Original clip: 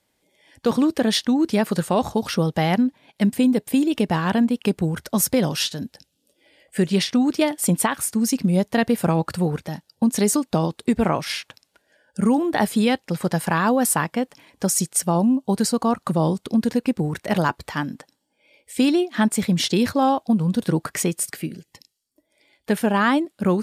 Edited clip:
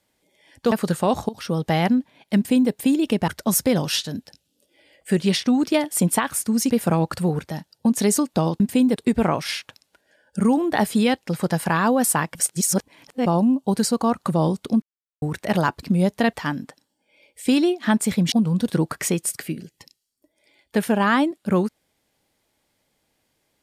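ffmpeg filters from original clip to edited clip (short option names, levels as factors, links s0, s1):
-filter_complex "[0:a]asplit=14[s0][s1][s2][s3][s4][s5][s6][s7][s8][s9][s10][s11][s12][s13];[s0]atrim=end=0.722[s14];[s1]atrim=start=1.598:end=2.17,asetpts=PTS-STARTPTS,afade=t=out:st=0.568:d=0.004:c=hsin:silence=0.133352[s15];[s2]atrim=start=2.17:end=4.162,asetpts=PTS-STARTPTS,afade=t=in:d=0.38:silence=0.133352[s16];[s3]atrim=start=4.948:end=8.372[s17];[s4]atrim=start=8.868:end=10.772[s18];[s5]atrim=start=3.238:end=3.602[s19];[s6]atrim=start=10.768:end=14.162[s20];[s7]atrim=start=14.158:end=15.072,asetpts=PTS-STARTPTS,areverse[s21];[s8]atrim=start=15.068:end=16.63,asetpts=PTS-STARTPTS,afade=t=out:st=1.558:d=0.004:c=hsin[s22];[s9]atrim=start=16.63:end=17.03,asetpts=PTS-STARTPTS,volume=0[s23];[s10]atrim=start=17.03:end=17.642,asetpts=PTS-STARTPTS,afade=t=in:d=0.004:c=hsin[s24];[s11]atrim=start=8.368:end=8.872[s25];[s12]atrim=start=17.638:end=19.632[s26];[s13]atrim=start=20.258[s27];[s15][s16]concat=n=2:v=0:a=1[s28];[s14][s28]acrossfade=d=0.004:c1=hsin:c2=hsin[s29];[s29][s17]acrossfade=d=0.004:c1=hsin:c2=hsin[s30];[s30][s18]acrossfade=d=0.004:c1=hsin:c2=hsin[s31];[s31][s19]acrossfade=d=0.004:c1=hsin:c2=hsin[s32];[s32][s20]acrossfade=d=0.004:c1=hsin:c2=hsin[s33];[s33][s21]acrossfade=d=0.004:c1=hsin:c2=hsin[s34];[s22][s23][s24]concat=n=3:v=0:a=1[s35];[s34][s35]acrossfade=d=0.004:c1=hsin:c2=hsin[s36];[s36][s25]acrossfade=d=0.004:c1=hsin:c2=hsin[s37];[s37][s26]acrossfade=d=0.004:c1=hsin:c2=hsin[s38];[s38][s27]acrossfade=d=0.004:c1=hsin:c2=hsin"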